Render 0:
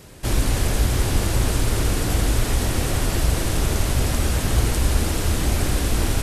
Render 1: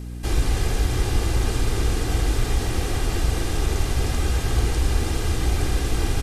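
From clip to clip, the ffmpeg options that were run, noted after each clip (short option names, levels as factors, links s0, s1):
-filter_complex "[0:a]acrossover=split=7800[s0][s1];[s1]acompressor=threshold=0.01:ratio=4:attack=1:release=60[s2];[s0][s2]amix=inputs=2:normalize=0,aecho=1:1:2.5:0.45,aeval=exprs='val(0)+0.0398*(sin(2*PI*60*n/s)+sin(2*PI*2*60*n/s)/2+sin(2*PI*3*60*n/s)/3+sin(2*PI*4*60*n/s)/4+sin(2*PI*5*60*n/s)/5)':c=same,volume=0.668"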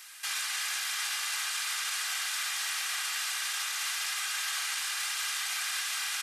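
-af "highpass=f=1300:w=0.5412,highpass=f=1300:w=1.3066,alimiter=level_in=1.78:limit=0.0631:level=0:latency=1:release=17,volume=0.562,volume=1.78"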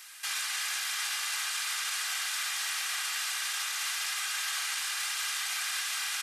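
-af anull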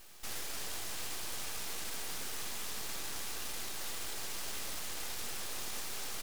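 -af "aeval=exprs='abs(val(0))':c=same,volume=0.596"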